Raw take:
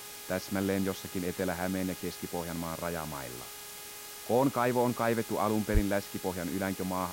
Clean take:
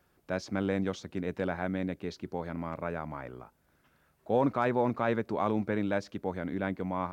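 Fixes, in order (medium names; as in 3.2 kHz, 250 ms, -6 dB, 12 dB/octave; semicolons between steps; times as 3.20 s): de-hum 414.1 Hz, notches 30; de-plosive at 5.73 s; noise print and reduce 24 dB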